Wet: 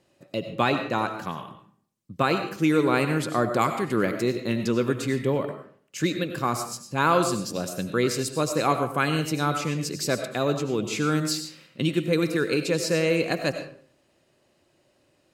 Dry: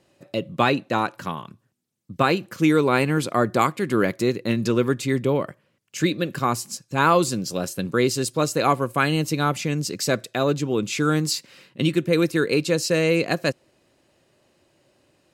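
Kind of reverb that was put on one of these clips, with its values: algorithmic reverb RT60 0.53 s, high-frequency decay 0.7×, pre-delay 55 ms, DRR 7 dB; trim -3.5 dB

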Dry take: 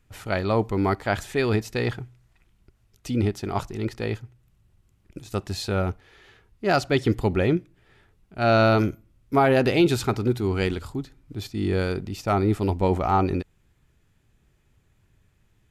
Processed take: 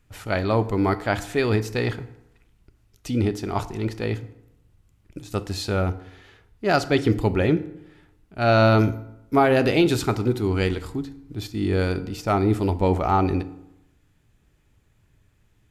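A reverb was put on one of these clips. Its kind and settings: FDN reverb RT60 0.86 s, low-frequency decay 1×, high-frequency decay 0.65×, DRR 11.5 dB; trim +1 dB

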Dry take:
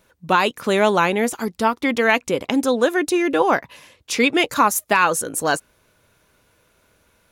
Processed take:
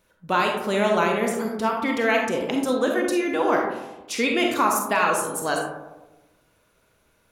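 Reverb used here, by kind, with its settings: algorithmic reverb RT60 1.1 s, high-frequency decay 0.3×, pre-delay 5 ms, DRR 0.5 dB; trim -6.5 dB

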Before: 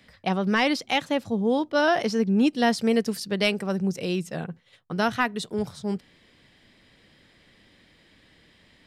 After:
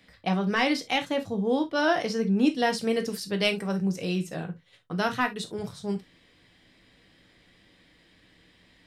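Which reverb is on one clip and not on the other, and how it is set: gated-style reverb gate 90 ms falling, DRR 5.5 dB; trim -3 dB

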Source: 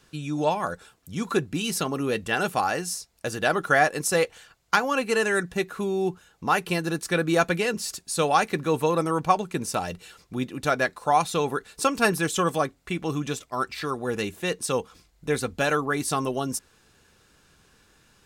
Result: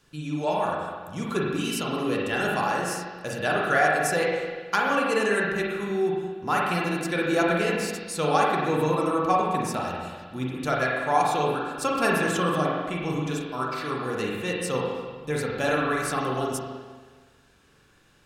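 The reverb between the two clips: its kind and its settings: spring tank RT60 1.5 s, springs 39/46 ms, chirp 20 ms, DRR -3 dB; trim -4.5 dB

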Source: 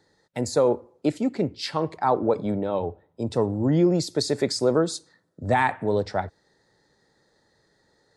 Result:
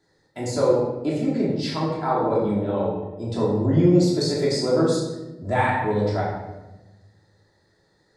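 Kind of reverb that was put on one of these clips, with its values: simulated room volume 510 m³, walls mixed, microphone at 3 m; trim -6.5 dB

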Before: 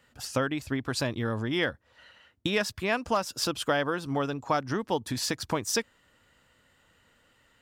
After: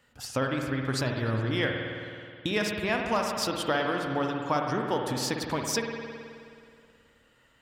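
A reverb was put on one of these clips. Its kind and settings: spring tank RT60 2.3 s, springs 53 ms, chirp 50 ms, DRR 1.5 dB; trim -1.5 dB

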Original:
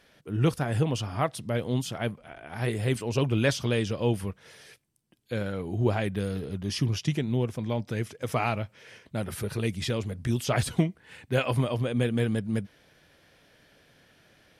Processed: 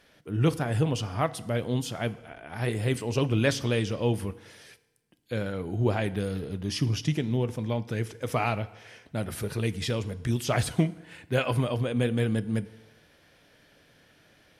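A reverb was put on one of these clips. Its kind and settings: FDN reverb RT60 1.1 s, low-frequency decay 0.85×, high-frequency decay 0.8×, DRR 14.5 dB

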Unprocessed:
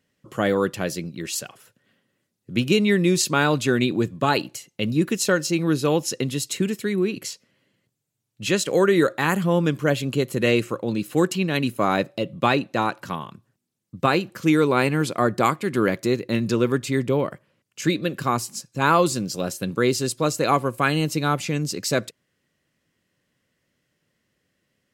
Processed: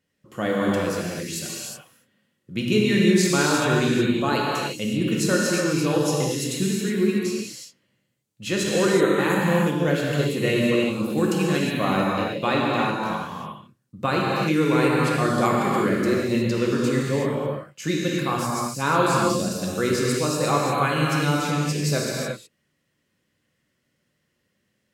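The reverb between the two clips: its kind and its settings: gated-style reverb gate 390 ms flat, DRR -4 dB; trim -5.5 dB

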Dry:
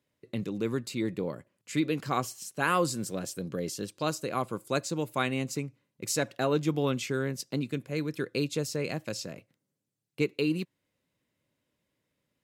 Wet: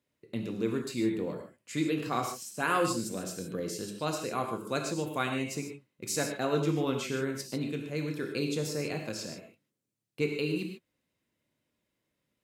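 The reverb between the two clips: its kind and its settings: gated-style reverb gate 170 ms flat, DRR 2.5 dB; trim -3 dB

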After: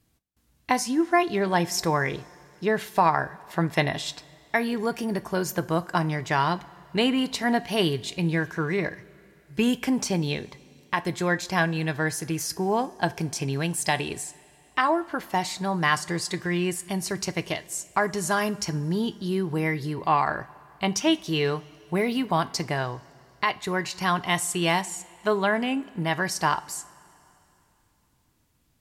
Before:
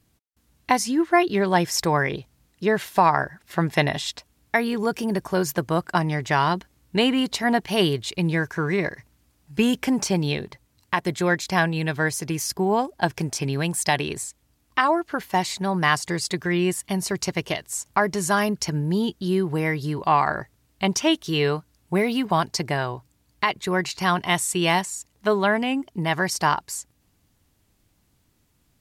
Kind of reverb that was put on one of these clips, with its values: two-slope reverb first 0.3 s, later 3 s, from -18 dB, DRR 12 dB; trim -3 dB

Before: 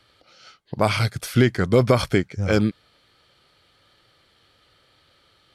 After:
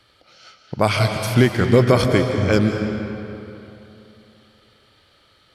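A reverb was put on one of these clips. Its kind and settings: algorithmic reverb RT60 3 s, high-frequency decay 0.7×, pre-delay 110 ms, DRR 4.5 dB; trim +2 dB

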